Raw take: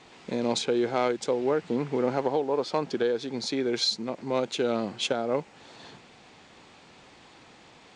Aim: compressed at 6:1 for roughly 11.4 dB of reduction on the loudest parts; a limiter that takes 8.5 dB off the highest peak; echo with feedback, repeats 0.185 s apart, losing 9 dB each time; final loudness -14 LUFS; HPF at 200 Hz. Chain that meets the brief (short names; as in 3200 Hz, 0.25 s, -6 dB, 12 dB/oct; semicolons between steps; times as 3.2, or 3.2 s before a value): HPF 200 Hz; compressor 6:1, threshold -34 dBFS; limiter -31.5 dBFS; feedback echo 0.185 s, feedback 35%, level -9 dB; gain +28 dB